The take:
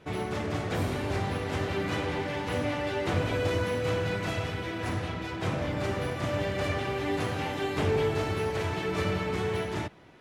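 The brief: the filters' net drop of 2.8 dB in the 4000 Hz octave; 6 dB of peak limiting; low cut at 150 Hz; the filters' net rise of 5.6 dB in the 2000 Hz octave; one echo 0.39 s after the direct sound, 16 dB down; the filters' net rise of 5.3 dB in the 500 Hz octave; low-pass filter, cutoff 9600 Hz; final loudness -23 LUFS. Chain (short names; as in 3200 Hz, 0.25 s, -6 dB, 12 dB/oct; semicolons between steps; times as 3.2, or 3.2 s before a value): HPF 150 Hz; LPF 9600 Hz; bell 500 Hz +6 dB; bell 2000 Hz +8.5 dB; bell 4000 Hz -8.5 dB; limiter -19 dBFS; echo 0.39 s -16 dB; gain +5.5 dB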